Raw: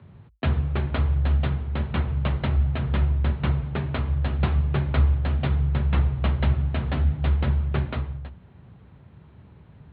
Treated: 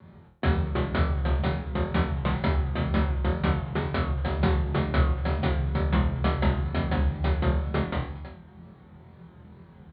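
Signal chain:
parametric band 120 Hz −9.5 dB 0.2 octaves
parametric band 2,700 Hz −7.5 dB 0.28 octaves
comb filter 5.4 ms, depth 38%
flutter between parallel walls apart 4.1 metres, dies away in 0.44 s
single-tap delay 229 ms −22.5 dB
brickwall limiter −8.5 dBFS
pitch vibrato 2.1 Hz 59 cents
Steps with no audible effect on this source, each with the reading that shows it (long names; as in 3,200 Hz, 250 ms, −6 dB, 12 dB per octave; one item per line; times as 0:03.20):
brickwall limiter −8.5 dBFS: peak of its input −11.0 dBFS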